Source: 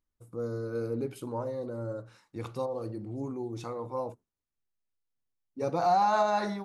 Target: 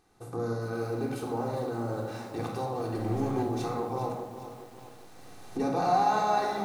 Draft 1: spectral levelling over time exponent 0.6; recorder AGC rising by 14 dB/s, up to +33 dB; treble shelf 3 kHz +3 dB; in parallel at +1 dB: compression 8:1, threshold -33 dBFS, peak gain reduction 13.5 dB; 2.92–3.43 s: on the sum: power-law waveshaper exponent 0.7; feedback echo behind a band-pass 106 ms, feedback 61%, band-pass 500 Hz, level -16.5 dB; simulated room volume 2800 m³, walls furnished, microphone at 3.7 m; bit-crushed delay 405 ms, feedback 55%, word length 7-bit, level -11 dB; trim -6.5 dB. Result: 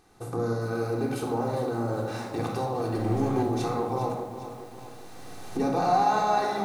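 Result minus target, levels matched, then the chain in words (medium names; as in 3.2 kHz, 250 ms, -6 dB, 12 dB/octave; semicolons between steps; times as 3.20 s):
compression: peak gain reduction +13.5 dB
spectral levelling over time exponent 0.6; recorder AGC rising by 14 dB/s, up to +33 dB; treble shelf 3 kHz +3 dB; 2.92–3.43 s: power-law waveshaper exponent 0.7; feedback echo behind a band-pass 106 ms, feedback 61%, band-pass 500 Hz, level -16.5 dB; simulated room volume 2800 m³, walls furnished, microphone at 3.7 m; bit-crushed delay 405 ms, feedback 55%, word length 7-bit, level -11 dB; trim -6.5 dB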